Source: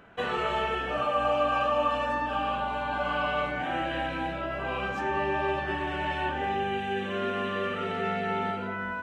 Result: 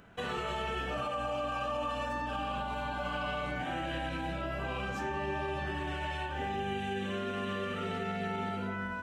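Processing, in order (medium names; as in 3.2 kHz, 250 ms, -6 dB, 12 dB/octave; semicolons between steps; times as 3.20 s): tone controls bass +7 dB, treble +10 dB; peak limiter -21.5 dBFS, peak gain reduction 7 dB; 5.94–6.39 s: peaking EQ 220 Hz -11.5 dB 0.72 oct; trim -5 dB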